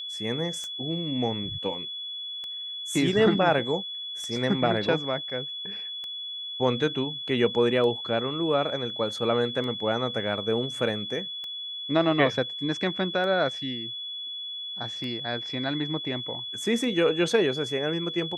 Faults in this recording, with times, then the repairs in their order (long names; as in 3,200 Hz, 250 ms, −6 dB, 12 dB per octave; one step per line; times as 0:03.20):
scratch tick 33 1/3 rpm −24 dBFS
whistle 3,400 Hz −33 dBFS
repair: click removal
notch filter 3,400 Hz, Q 30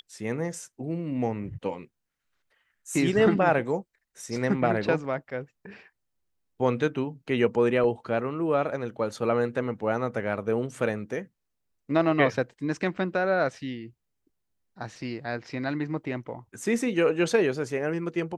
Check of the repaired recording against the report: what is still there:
none of them is left